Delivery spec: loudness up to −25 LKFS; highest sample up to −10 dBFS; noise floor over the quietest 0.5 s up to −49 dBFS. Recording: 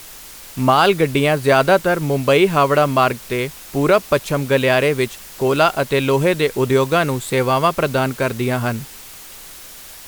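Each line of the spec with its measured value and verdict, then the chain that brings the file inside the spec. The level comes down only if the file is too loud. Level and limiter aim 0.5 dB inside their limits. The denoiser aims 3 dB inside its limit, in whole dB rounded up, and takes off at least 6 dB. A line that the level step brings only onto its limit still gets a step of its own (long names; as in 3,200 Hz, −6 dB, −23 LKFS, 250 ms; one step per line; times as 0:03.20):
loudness −17.0 LKFS: out of spec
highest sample −3.0 dBFS: out of spec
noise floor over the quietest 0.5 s −38 dBFS: out of spec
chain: broadband denoise 6 dB, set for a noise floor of −38 dBFS
level −8.5 dB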